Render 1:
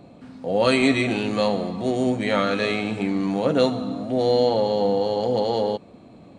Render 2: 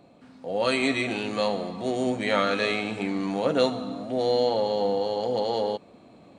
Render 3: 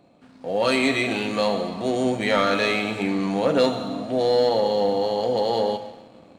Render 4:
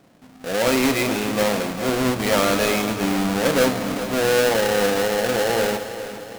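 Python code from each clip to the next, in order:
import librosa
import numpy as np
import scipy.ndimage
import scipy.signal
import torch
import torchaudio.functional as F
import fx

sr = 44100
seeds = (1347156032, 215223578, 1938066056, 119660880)

y1 = fx.low_shelf(x, sr, hz=280.0, db=-8.0)
y1 = fx.rider(y1, sr, range_db=10, speed_s=2.0)
y1 = y1 * 10.0 ** (-2.0 / 20.0)
y2 = fx.rev_schroeder(y1, sr, rt60_s=1.4, comb_ms=27, drr_db=10.5)
y2 = fx.leveller(y2, sr, passes=1)
y3 = fx.halfwave_hold(y2, sr)
y3 = fx.echo_feedback(y3, sr, ms=407, feedback_pct=57, wet_db=-12.5)
y3 = y3 * 10.0 ** (-2.5 / 20.0)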